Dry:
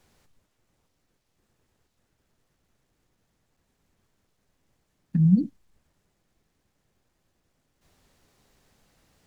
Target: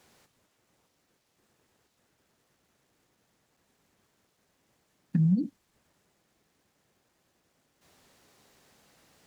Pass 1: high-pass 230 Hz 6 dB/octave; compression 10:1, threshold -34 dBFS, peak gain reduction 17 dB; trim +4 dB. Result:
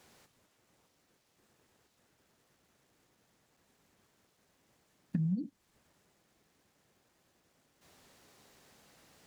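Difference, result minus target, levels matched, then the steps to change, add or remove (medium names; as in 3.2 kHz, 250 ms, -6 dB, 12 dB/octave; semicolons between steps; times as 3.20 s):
compression: peak gain reduction +8.5 dB
change: compression 10:1, threshold -24.5 dBFS, peak gain reduction 8 dB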